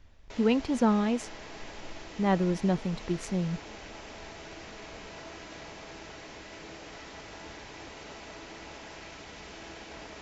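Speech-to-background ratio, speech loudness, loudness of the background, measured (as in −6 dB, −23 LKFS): 15.5 dB, −29.0 LKFS, −44.5 LKFS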